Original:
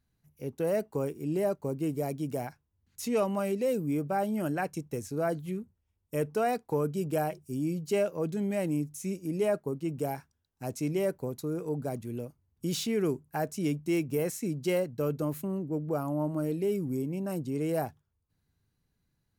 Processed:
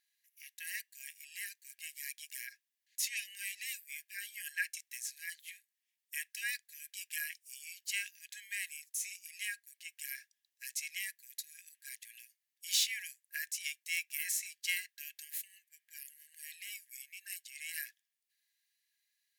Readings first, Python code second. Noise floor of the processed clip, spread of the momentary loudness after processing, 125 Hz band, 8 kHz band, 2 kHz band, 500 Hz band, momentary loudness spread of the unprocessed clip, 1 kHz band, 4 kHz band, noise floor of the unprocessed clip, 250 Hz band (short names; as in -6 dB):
under -85 dBFS, 14 LU, under -40 dB, +5.5 dB, +4.0 dB, under -40 dB, 8 LU, under -40 dB, +5.5 dB, -78 dBFS, under -40 dB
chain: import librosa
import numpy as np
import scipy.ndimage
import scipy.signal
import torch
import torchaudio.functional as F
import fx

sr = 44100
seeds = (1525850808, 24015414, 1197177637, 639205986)

y = fx.brickwall_highpass(x, sr, low_hz=1600.0)
y = y * librosa.db_to_amplitude(5.5)